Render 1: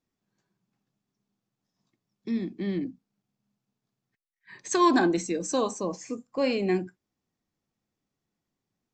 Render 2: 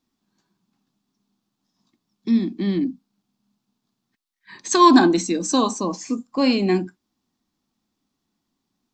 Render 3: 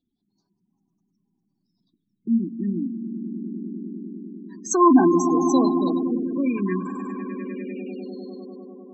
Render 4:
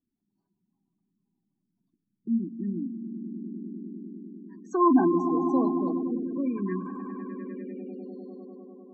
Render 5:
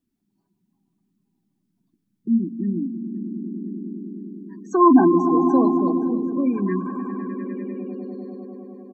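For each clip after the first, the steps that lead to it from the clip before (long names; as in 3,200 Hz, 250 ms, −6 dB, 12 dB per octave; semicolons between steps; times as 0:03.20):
octave-band graphic EQ 125/250/500/1,000/2,000/4,000 Hz −7/+8/−7/+5/−4/+6 dB; level +6 dB
echo that builds up and dies away 100 ms, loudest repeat 5, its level −11.5 dB; all-pass phaser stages 4, 0.25 Hz, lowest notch 600–3,200 Hz; gate on every frequency bin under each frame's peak −20 dB strong; level −2 dB
Savitzky-Golay smoothing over 41 samples; level −5.5 dB
repeating echo 520 ms, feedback 49%, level −19 dB; level +7 dB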